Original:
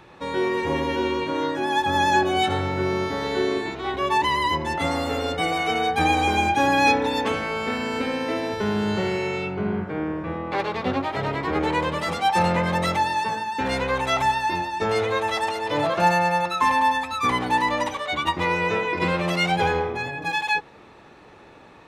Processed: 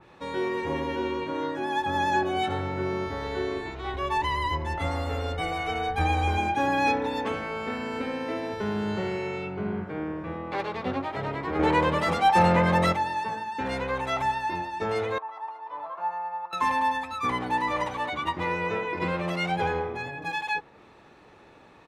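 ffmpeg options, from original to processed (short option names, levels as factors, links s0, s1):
-filter_complex "[0:a]asplit=3[s0][s1][s2];[s0]afade=t=out:st=3.06:d=0.02[s3];[s1]asubboost=boost=8:cutoff=73,afade=t=in:st=3.06:d=0.02,afade=t=out:st=6.37:d=0.02[s4];[s2]afade=t=in:st=6.37:d=0.02[s5];[s3][s4][s5]amix=inputs=3:normalize=0,asettb=1/sr,asplit=3[s6][s7][s8];[s6]atrim=end=11.594[s9];[s7]atrim=start=11.59:end=12.93,asetpts=PTS-STARTPTS,afade=t=in:d=0.004:c=qsin,afade=t=out:st=1.336:d=0.004:c=qsin,acontrast=72[s10];[s8]atrim=start=12.926[s11];[s9][s10]acrossfade=d=0.004:c1=hsin:c2=qsin[s12];[s12][s11]acrossfade=d=0.004:c1=qsin:c2=hsin,asettb=1/sr,asplit=3[s13][s14][s15];[s13]atrim=end=15.184[s16];[s14]atrim=start=15.18:end=16.53,asetpts=PTS-STARTPTS,afade=t=in:d=0.004:c=qsin,afade=t=out:st=1.346:d=0.004:c=qsin,bandpass=f=1000:t=q:w=5.1[s17];[s15]atrim=start=16.526[s18];[s16][s17]acrossfade=d=0.004:c1=hsin:c2=qsin[s19];[s19][s18]acrossfade=d=0.004:c1=qsin:c2=hsin,asplit=2[s20][s21];[s21]afade=t=in:st=17.2:d=0.01,afade=t=out:st=17.62:d=0.01,aecho=0:1:470|940|1410|1880:0.501187|0.150356|0.0451069|0.0135321[s22];[s20][s22]amix=inputs=2:normalize=0,adynamicequalizer=threshold=0.0141:dfrequency=2700:dqfactor=0.7:tfrequency=2700:tqfactor=0.7:attack=5:release=100:ratio=0.375:range=3:mode=cutabove:tftype=highshelf,volume=0.562"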